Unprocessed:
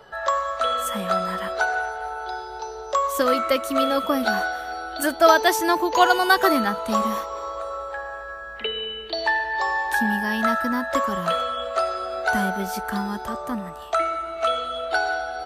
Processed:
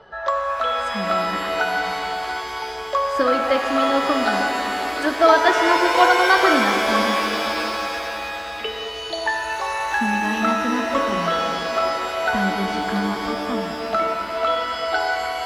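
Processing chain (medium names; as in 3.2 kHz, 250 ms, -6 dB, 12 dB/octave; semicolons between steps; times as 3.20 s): distance through air 140 m; pitch-shifted reverb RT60 3.4 s, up +7 st, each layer -2 dB, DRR 5 dB; trim +1 dB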